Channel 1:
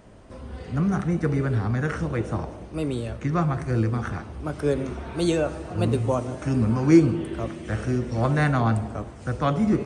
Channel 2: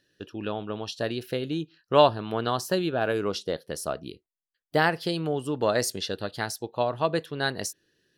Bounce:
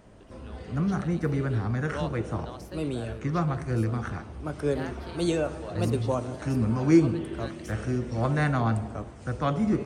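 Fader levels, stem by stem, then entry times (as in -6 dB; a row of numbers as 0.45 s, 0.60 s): -3.5 dB, -17.5 dB; 0.00 s, 0.00 s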